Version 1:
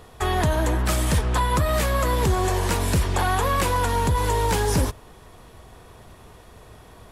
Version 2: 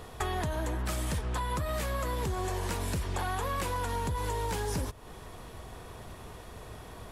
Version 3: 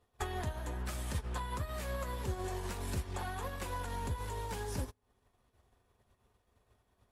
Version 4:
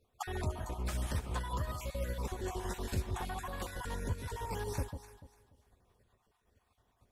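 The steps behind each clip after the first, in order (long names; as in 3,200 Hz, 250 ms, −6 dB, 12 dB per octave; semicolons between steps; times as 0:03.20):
downward compressor 5 to 1, threshold −32 dBFS, peak gain reduction 13.5 dB; level +1 dB
notch comb filter 160 Hz; convolution reverb RT60 2.4 s, pre-delay 3 ms, DRR 17 dB; expander for the loud parts 2.5 to 1, over −49 dBFS; level −1 dB
time-frequency cells dropped at random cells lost 33%; delay that swaps between a low-pass and a high-pass 146 ms, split 930 Hz, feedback 52%, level −7 dB; level +1.5 dB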